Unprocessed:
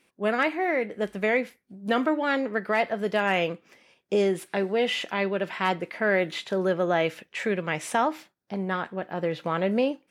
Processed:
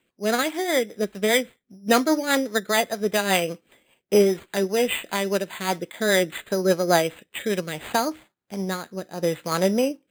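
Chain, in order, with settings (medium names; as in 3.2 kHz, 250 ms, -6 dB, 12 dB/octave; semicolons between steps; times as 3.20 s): careless resampling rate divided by 8×, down none, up hold; rotary cabinet horn 5 Hz, later 1 Hz, at 7.32 s; upward expansion 1.5:1, over -37 dBFS; trim +7.5 dB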